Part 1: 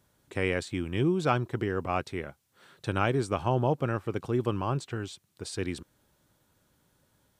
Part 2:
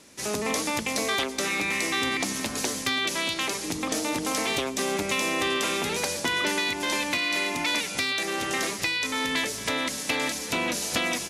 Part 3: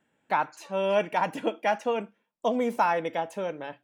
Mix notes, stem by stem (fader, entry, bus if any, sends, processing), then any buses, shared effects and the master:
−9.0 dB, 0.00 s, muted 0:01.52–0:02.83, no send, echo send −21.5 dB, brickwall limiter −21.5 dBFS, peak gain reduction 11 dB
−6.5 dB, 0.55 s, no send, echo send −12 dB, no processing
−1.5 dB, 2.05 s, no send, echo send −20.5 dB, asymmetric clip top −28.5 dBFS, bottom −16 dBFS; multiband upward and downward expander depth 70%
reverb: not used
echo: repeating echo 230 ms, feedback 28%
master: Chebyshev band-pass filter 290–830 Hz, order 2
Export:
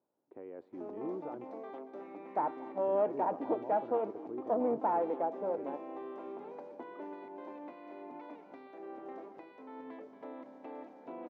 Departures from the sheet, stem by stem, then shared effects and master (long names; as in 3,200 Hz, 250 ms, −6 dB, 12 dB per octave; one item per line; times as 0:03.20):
stem 2 −6.5 dB → −13.0 dB
stem 3: missing multiband upward and downward expander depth 70%